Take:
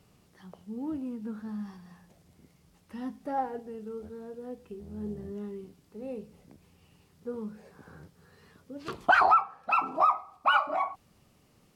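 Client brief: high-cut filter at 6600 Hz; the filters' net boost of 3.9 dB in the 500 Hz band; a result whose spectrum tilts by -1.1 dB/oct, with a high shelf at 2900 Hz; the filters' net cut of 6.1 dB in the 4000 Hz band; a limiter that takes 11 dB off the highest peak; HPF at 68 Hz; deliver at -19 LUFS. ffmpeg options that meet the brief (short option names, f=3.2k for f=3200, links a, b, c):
-af "highpass=68,lowpass=6.6k,equalizer=f=500:t=o:g=5.5,highshelf=f=2.9k:g=-3.5,equalizer=f=4k:t=o:g=-7,volume=15.5dB,alimiter=limit=-5.5dB:level=0:latency=1"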